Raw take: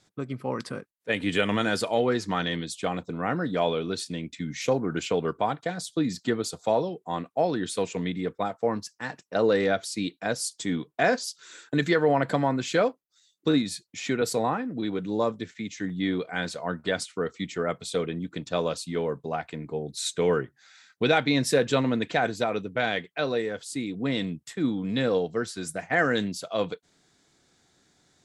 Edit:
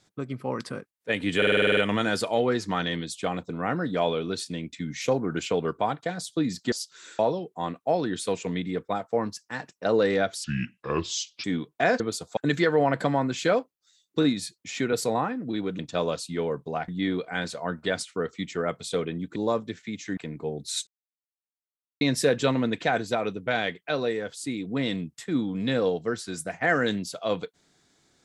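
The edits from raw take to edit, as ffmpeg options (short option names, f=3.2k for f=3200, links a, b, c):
-filter_complex "[0:a]asplit=21[a][b][c][d][e][f][g][h][i][j][k][l][m][n][o][p][q][r][s][t][u];[a]atrim=end=1.422[v];[b]atrim=start=1.368:end=1.422[w];[c]atrim=start=1.368:end=1.422[x];[d]atrim=start=1.368:end=1.422[y];[e]atrim=start=1.368:end=1.422[z];[f]atrim=start=1.368:end=1.422[aa];[g]atrim=start=1.368:end=1.422[ab];[h]atrim=start=1.368:end=1.422[ac];[i]atrim=start=1.368:end=6.322[ad];[j]atrim=start=11.188:end=11.662[ae];[k]atrim=start=6.688:end=9.944[af];[l]atrim=start=9.94:end=10.63,asetpts=PTS-STARTPTS,asetrate=30429,aresample=44100[ag];[m]atrim=start=10.626:end=11.192[ah];[n]atrim=start=6.318:end=6.692[ai];[o]atrim=start=11.658:end=15.082[aj];[p]atrim=start=18.368:end=19.462[ak];[q]atrim=start=15.888:end=18.372[al];[r]atrim=start=15.078:end=15.892[am];[s]atrim=start=19.458:end=20.16,asetpts=PTS-STARTPTS,afade=t=out:st=0.698:d=0.004:c=hsin[an];[t]atrim=start=20.16:end=21.3,asetpts=PTS-STARTPTS,volume=0[ao];[u]atrim=start=21.3,asetpts=PTS-STARTPTS,afade=t=in:d=0.004:c=hsin[ap];[v][w]acrossfade=d=0.004:c1=hsin:c2=hsin[aq];[aq][x]acrossfade=d=0.004:c1=hsin:c2=hsin[ar];[ar][y]acrossfade=d=0.004:c1=hsin:c2=hsin[as];[as][z]acrossfade=d=0.004:c1=hsin:c2=hsin[at];[at][aa]acrossfade=d=0.004:c1=hsin:c2=hsin[au];[au][ab]acrossfade=d=0.004:c1=hsin:c2=hsin[av];[av][ac]acrossfade=d=0.004:c1=hsin:c2=hsin[aw];[aw][ad]acrossfade=d=0.004:c1=hsin:c2=hsin[ax];[ax][ae]acrossfade=d=0.004:c1=hsin:c2=hsin[ay];[ay][af]acrossfade=d=0.004:c1=hsin:c2=hsin[az];[az][ag]acrossfade=d=0.004:c1=hsin:c2=hsin[ba];[ba][ah]acrossfade=d=0.004:c1=hsin:c2=hsin[bb];[bb][ai]acrossfade=d=0.004:c1=hsin:c2=hsin[bc];[bc][aj]acrossfade=d=0.004:c1=hsin:c2=hsin[bd];[bd][ak]acrossfade=d=0.004:c1=hsin:c2=hsin[be];[be][al]acrossfade=d=0.004:c1=hsin:c2=hsin[bf];[bf][am]acrossfade=d=0.004:c1=hsin:c2=hsin[bg];[an][ao][ap]concat=n=3:v=0:a=1[bh];[bg][bh]acrossfade=d=0.004:c1=hsin:c2=hsin"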